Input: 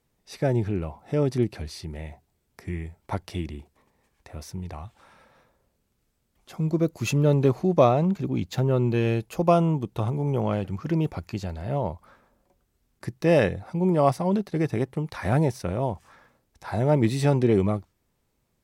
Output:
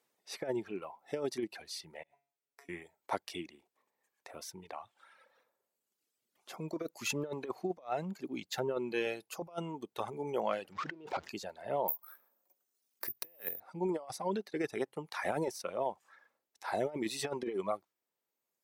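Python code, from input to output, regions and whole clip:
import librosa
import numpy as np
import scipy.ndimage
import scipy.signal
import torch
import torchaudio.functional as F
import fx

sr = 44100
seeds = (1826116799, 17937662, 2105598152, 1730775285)

y = fx.chain(x, sr, fx.over_compress(threshold_db=-41.0, ratio=-0.5),
    fx.comb_fb(f0_hz=140.0, decay_s=0.39, harmonics='all', damping=0.0, mix_pct=90), at=(2.03, 2.69))
y = fx.chain(y, sr, fx.zero_step(step_db=-34.5),
    fx.over_compress(threshold_db=-30.0, ratio=-1.0),
    fx.air_absorb(metres=160.0), at=(10.72, 11.29))
y = fx.chain(y, sr, fx.highpass(hz=93.0, slope=12),
    fx.high_shelf(hz=6000.0, db=8.5),
    fx.resample_bad(factor=3, down='filtered', up='zero_stuff'), at=(11.88, 13.6))
y = scipy.signal.sosfilt(scipy.signal.butter(2, 420.0, 'highpass', fs=sr, output='sos'), y)
y = fx.dereverb_blind(y, sr, rt60_s=1.8)
y = fx.over_compress(y, sr, threshold_db=-29.0, ratio=-0.5)
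y = F.gain(torch.from_numpy(y), -5.5).numpy()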